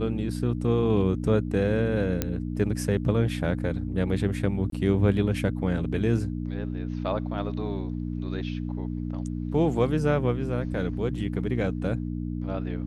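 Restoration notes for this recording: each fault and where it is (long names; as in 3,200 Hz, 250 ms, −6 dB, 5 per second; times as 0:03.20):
mains hum 60 Hz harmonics 5 −31 dBFS
0:02.22: click −10 dBFS
0:04.70–0:04.72: drop-out 23 ms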